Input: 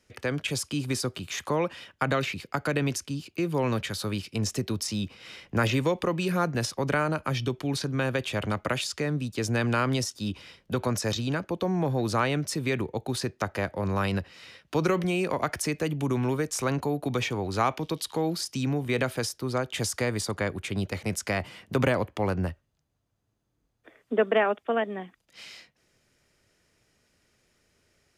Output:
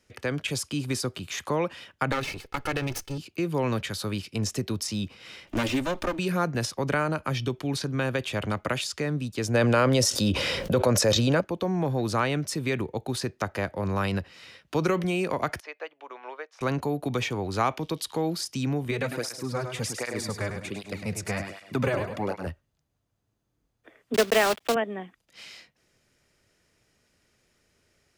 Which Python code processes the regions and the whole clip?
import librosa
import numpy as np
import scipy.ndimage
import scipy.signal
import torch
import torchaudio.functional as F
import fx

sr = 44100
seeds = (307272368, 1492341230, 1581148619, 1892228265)

y = fx.chain(x, sr, fx.lower_of_two(delay_ms=2.3),
    fx.notch(hz=7200.0, q=15.0), at=(2.12, 3.18))
y = fx.chain(y, sr, fx.lower_of_two(delay_ms=3.3),
    fx.band_squash(depth_pct=40), at=(5.47, 6.19))
y = fx.chain(y, sr, fx.peak_eq(hz=540.0, db=10.5, octaves=0.4),
    fx.env_flatten(amount_pct=70), at=(9.54, 11.41))
y = fx.chain(y, sr, fx.highpass(hz=570.0, slope=24),
    fx.air_absorb(metres=290.0),
    fx.upward_expand(threshold_db=-54.0, expansion=1.5), at=(15.6, 16.61))
y = fx.chain(y, sr, fx.notch(hz=3100.0, q=15.0),
    fx.echo_feedback(ms=103, feedback_pct=40, wet_db=-7),
    fx.flanger_cancel(hz=1.3, depth_ms=4.5), at=(18.91, 22.47))
y = fx.chain(y, sr, fx.block_float(bits=3),
    fx.peak_eq(hz=3500.0, db=5.5, octaves=1.9),
    fx.band_squash(depth_pct=40), at=(24.14, 24.76))